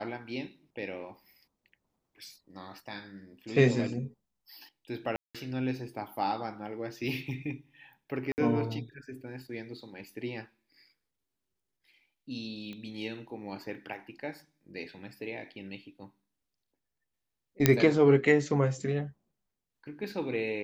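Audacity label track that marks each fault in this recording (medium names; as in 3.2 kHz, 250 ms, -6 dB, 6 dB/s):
5.160000	5.350000	dropout 186 ms
8.320000	8.380000	dropout 59 ms
12.730000	12.730000	pop -30 dBFS
17.660000	17.660000	pop -5 dBFS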